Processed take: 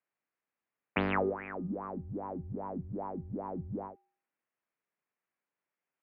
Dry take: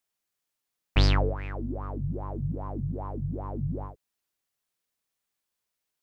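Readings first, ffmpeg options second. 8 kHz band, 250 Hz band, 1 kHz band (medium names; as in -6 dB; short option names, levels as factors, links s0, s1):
no reading, -2.5 dB, -0.5 dB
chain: -af "bandreject=f=427.1:t=h:w=4,bandreject=f=854.2:t=h:w=4,bandreject=f=1281.3:t=h:w=4,highpass=f=210:t=q:w=0.5412,highpass=f=210:t=q:w=1.307,lowpass=f=2500:t=q:w=0.5176,lowpass=f=2500:t=q:w=0.7071,lowpass=f=2500:t=q:w=1.932,afreqshift=-58"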